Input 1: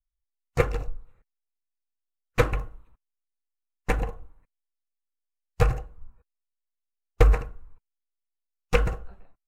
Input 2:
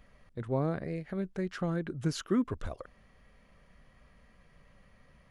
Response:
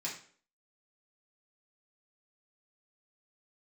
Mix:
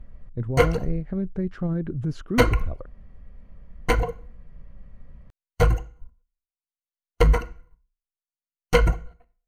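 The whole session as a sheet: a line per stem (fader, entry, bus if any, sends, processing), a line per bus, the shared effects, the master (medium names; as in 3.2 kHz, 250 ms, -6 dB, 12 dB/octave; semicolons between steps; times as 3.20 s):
-6.0 dB, 0.00 s, send -12 dB, waveshaping leveller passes 3; rippled EQ curve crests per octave 1.9, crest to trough 13 dB; reverb removal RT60 0.77 s
-0.5 dB, 0.00 s, no send, tilt EQ -4 dB/octave; peak limiter -18 dBFS, peak gain reduction 11.5 dB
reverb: on, RT60 0.50 s, pre-delay 3 ms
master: none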